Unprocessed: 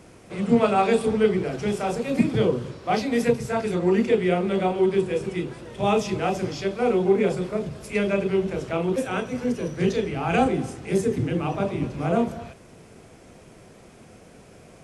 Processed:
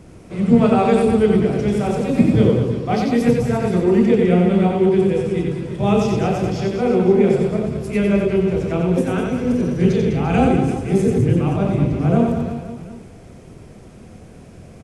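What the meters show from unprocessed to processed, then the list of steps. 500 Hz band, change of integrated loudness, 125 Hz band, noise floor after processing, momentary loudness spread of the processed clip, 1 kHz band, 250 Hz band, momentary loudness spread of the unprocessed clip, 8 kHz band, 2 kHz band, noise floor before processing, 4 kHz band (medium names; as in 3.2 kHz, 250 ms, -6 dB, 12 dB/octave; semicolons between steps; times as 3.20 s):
+5.0 dB, +6.5 dB, +10.5 dB, -41 dBFS, 7 LU, +2.5 dB, +8.5 dB, 8 LU, no reading, +1.5 dB, -49 dBFS, +1.5 dB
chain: bass shelf 290 Hz +12 dB; reverse bouncing-ball echo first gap 90 ms, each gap 1.25×, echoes 5; trim -1 dB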